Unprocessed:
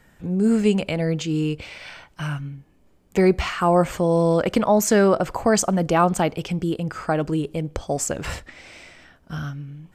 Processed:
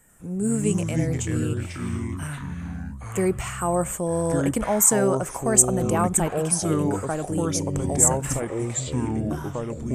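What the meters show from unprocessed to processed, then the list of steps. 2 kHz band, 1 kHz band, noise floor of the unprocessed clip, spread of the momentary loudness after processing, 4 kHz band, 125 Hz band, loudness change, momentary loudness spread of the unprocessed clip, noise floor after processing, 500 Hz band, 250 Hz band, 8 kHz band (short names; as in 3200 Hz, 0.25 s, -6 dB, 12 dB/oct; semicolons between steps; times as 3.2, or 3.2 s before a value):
-5.5 dB, -4.5 dB, -57 dBFS, 13 LU, -6.0 dB, +0.5 dB, -1.5 dB, 14 LU, -36 dBFS, -4.0 dB, -3.0 dB, +9.0 dB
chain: echoes that change speed 88 ms, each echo -5 st, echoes 3; resonant high shelf 6200 Hz +11.5 dB, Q 3; gain -6 dB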